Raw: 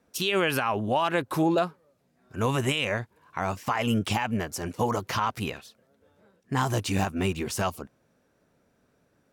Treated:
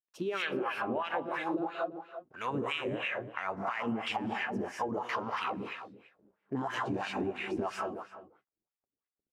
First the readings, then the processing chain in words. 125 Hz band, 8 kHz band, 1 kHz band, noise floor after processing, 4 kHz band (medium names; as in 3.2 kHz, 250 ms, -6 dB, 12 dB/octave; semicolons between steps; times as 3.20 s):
-15.0 dB, -18.5 dB, -6.0 dB, under -85 dBFS, -9.0 dB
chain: echo from a far wall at 58 m, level -15 dB; hysteresis with a dead band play -52 dBFS; gated-style reverb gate 260 ms rising, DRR 1 dB; wah-wah 3 Hz 270–2400 Hz, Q 2.2; compression 6:1, threshold -33 dBFS, peak gain reduction 11 dB; trim +3 dB